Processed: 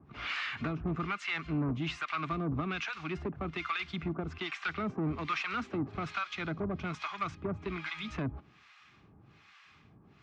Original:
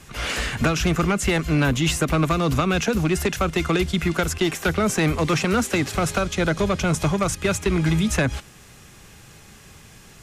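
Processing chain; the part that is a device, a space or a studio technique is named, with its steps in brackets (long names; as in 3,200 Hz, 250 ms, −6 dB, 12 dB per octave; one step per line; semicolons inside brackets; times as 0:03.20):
guitar amplifier with harmonic tremolo (two-band tremolo in antiphase 1.2 Hz, depth 100%, crossover 870 Hz; soft clipping −19.5 dBFS, distortion −15 dB; loudspeaker in its box 82–4,300 Hz, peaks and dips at 290 Hz +4 dB, 520 Hz −9 dB, 1,200 Hz +7 dB, 2,300 Hz +5 dB)
level −8 dB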